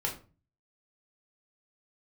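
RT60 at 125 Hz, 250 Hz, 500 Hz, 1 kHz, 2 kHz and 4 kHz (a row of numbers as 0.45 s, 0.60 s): 0.65 s, 0.50 s, 0.35 s, 0.35 s, 0.30 s, 0.25 s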